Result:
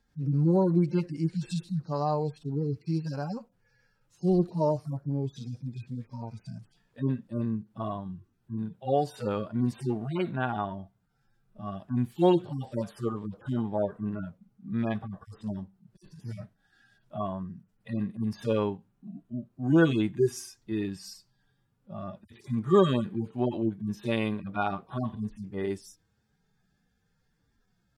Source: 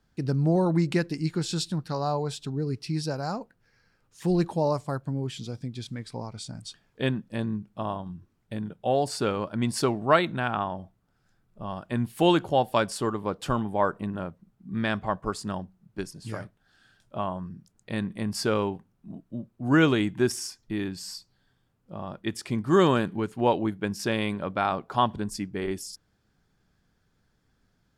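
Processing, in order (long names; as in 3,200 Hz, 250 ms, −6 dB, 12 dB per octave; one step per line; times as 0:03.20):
harmonic-percussive split with one part muted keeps harmonic
pitch shifter +0.5 semitones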